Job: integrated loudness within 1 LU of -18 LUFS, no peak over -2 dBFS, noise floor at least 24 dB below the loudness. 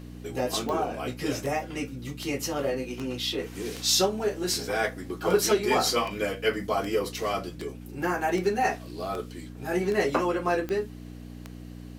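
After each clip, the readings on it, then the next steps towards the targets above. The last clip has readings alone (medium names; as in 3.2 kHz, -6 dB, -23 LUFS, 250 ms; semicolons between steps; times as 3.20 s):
clicks found 15; hum 60 Hz; highest harmonic 300 Hz; hum level -40 dBFS; loudness -28.0 LUFS; peak level -11.0 dBFS; loudness target -18.0 LUFS
-> de-click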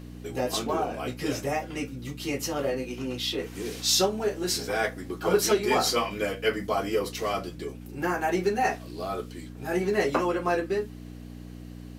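clicks found 0; hum 60 Hz; highest harmonic 300 Hz; hum level -40 dBFS
-> de-hum 60 Hz, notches 5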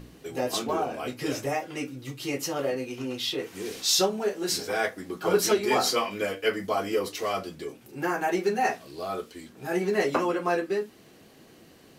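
hum not found; loudness -28.0 LUFS; peak level -11.0 dBFS; loudness target -18.0 LUFS
-> trim +10 dB; peak limiter -2 dBFS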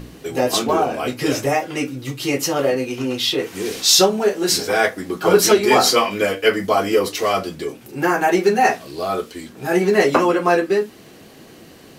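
loudness -18.0 LUFS; peak level -2.0 dBFS; noise floor -44 dBFS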